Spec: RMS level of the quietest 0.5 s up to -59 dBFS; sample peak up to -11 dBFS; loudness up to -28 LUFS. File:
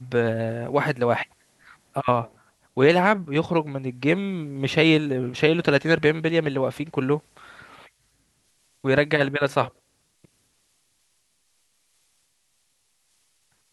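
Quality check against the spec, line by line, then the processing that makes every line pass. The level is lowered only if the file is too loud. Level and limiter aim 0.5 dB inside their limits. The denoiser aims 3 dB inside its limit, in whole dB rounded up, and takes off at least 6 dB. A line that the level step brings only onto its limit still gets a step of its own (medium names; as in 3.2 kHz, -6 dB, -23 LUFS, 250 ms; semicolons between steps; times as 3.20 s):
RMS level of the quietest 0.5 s -68 dBFS: pass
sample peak -4.0 dBFS: fail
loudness -22.5 LUFS: fail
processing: trim -6 dB; peak limiter -11.5 dBFS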